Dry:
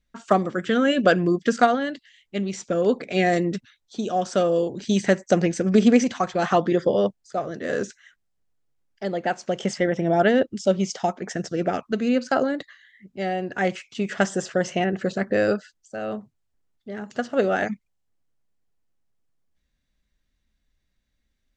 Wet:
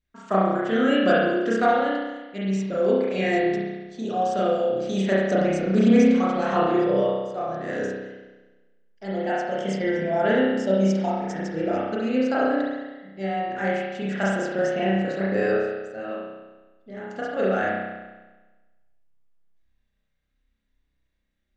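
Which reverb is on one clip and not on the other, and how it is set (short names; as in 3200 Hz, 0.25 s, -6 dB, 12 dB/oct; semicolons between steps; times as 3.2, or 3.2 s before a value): spring tank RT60 1.2 s, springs 31 ms, chirp 40 ms, DRR -7.5 dB; gain -8.5 dB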